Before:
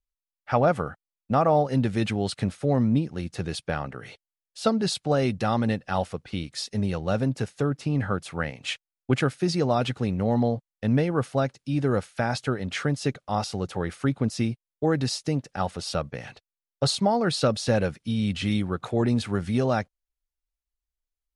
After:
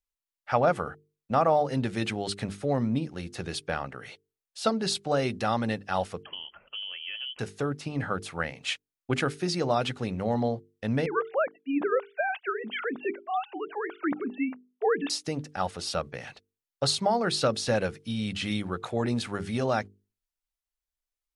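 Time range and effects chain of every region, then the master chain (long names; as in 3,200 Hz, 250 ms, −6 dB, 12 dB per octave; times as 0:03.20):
0:06.23–0:07.39: downward compressor 5 to 1, threshold −35 dBFS + voice inversion scrambler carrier 3,200 Hz
0:11.06–0:15.10: three sine waves on the formant tracks + high-pass filter 190 Hz
whole clip: low-shelf EQ 360 Hz −6.5 dB; mains-hum notches 50/100/150/200/250/300/350/400/450 Hz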